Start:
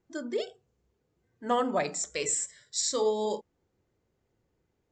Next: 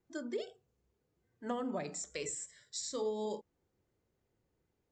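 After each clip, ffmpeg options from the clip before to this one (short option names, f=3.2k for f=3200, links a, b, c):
-filter_complex "[0:a]acrossover=split=360[a][b];[b]acompressor=threshold=-34dB:ratio=6[c];[a][c]amix=inputs=2:normalize=0,volume=-4.5dB"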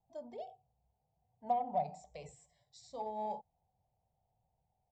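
-af "firequalizer=gain_entry='entry(150,0);entry(330,-22);entry(750,13);entry(1400,-29);entry(2200,-14);entry(4800,-16);entry(6800,-22)':delay=0.05:min_phase=1,aeval=exprs='0.0668*(cos(1*acos(clip(val(0)/0.0668,-1,1)))-cos(1*PI/2))+0.000841*(cos(7*acos(clip(val(0)/0.0668,-1,1)))-cos(7*PI/2))':c=same,volume=1.5dB"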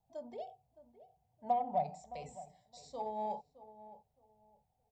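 -filter_complex "[0:a]asplit=2[a][b];[b]adelay=616,lowpass=f=1.2k:p=1,volume=-15dB,asplit=2[c][d];[d]adelay=616,lowpass=f=1.2k:p=1,volume=0.24,asplit=2[e][f];[f]adelay=616,lowpass=f=1.2k:p=1,volume=0.24[g];[a][c][e][g]amix=inputs=4:normalize=0,volume=1dB"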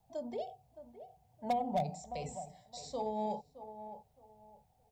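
-filter_complex "[0:a]volume=25.5dB,asoftclip=hard,volume=-25.5dB,acrossover=split=480|3000[a][b][c];[b]acompressor=threshold=-56dB:ratio=2[d];[a][d][c]amix=inputs=3:normalize=0,volume=8.5dB"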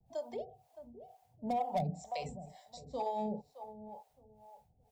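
-filter_complex "[0:a]acrossover=split=270|800|3300[a][b][c][d];[c]asoftclip=type=hard:threshold=-39dB[e];[a][b][e][d]amix=inputs=4:normalize=0,acrossover=split=490[f][g];[f]aeval=exprs='val(0)*(1-1/2+1/2*cos(2*PI*2.1*n/s))':c=same[h];[g]aeval=exprs='val(0)*(1-1/2-1/2*cos(2*PI*2.1*n/s))':c=same[i];[h][i]amix=inputs=2:normalize=0,volume=5.5dB"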